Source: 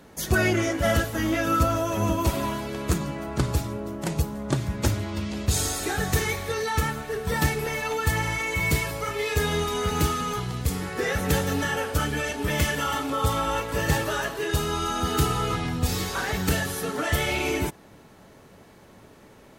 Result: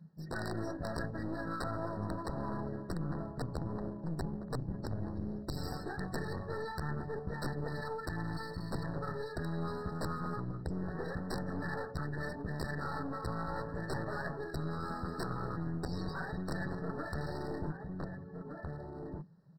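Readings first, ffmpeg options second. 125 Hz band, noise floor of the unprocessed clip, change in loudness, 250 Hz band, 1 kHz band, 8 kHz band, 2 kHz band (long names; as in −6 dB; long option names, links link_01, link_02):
−11.5 dB, −51 dBFS, −13.5 dB, −10.0 dB, −13.5 dB, −26.0 dB, −16.0 dB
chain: -filter_complex "[0:a]equalizer=frequency=160:width_type=o:width=0.44:gain=13,afftdn=noise_reduction=23:noise_floor=-31,aresample=16000,aeval=exprs='(mod(3.76*val(0)+1,2)-1)/3.76':channel_layout=same,aresample=44100,asplit=2[link_01][link_02];[link_02]adelay=1516,volume=-15dB,highshelf=frequency=4000:gain=-34.1[link_03];[link_01][link_03]amix=inputs=2:normalize=0,areverse,acompressor=threshold=-31dB:ratio=8,areverse,aeval=exprs='clip(val(0),-1,0.0075)':channel_layout=same,afftfilt=real='re*eq(mod(floor(b*sr/1024/1900),2),0)':imag='im*eq(mod(floor(b*sr/1024/1900),2),0)':win_size=1024:overlap=0.75,volume=-1dB"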